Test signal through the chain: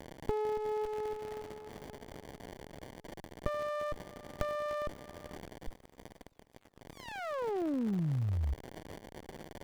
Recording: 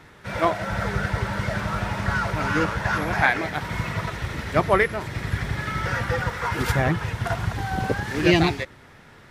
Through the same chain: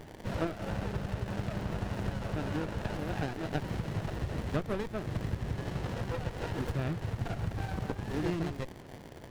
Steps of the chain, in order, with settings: compression 10:1, threshold -29 dBFS; crackle 330 per s -40 dBFS; sliding maximum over 33 samples

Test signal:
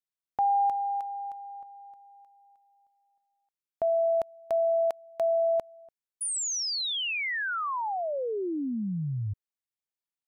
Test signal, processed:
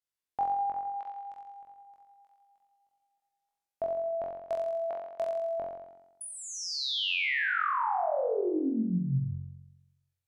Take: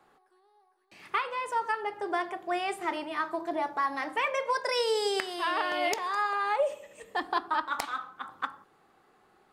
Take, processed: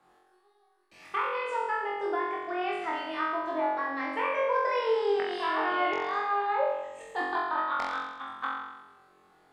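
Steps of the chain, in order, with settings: low-pass that closes with the level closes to 1.9 kHz, closed at -25 dBFS; flutter echo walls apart 3.8 m, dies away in 1 s; trim -4 dB

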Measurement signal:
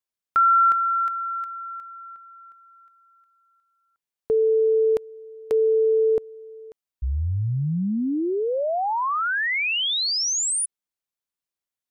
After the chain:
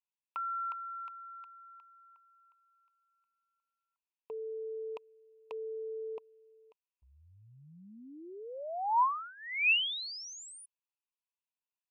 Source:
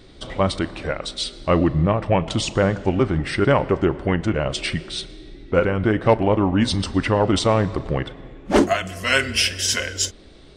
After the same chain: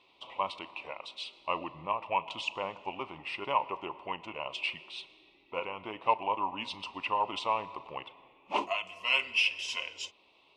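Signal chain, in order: two resonant band-passes 1.6 kHz, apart 1.4 oct

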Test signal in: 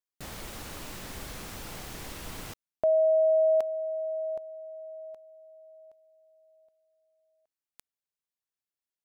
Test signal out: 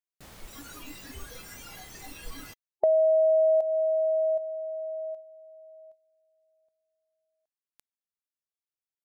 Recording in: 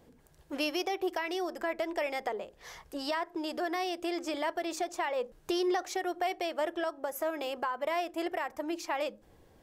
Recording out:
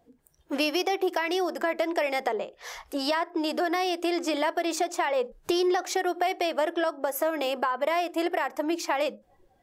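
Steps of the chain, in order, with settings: spectral noise reduction 16 dB; compression 3:1, threshold -30 dBFS; trim +8 dB

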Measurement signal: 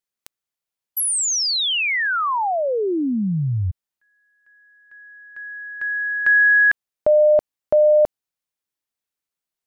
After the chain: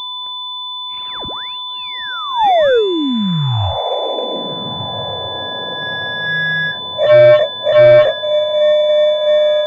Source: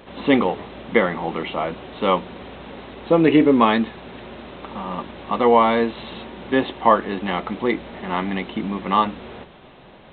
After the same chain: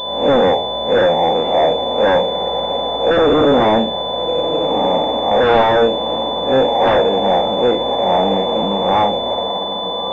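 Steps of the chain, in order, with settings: spectral blur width 99 ms; high-order bell 650 Hz +15 dB 1.1 oct; on a send: echo that smears into a reverb 1392 ms, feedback 50%, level -13 dB; on the sum: whistle 1 kHz -34 dBFS; dynamic bell 1.2 kHz, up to -6 dB, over -27 dBFS, Q 1.7; in parallel at -11 dB: sine folder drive 18 dB, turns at 6.5 dBFS; on the sum: class-D stage that switches slowly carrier 3.5 kHz; trim -7.5 dB

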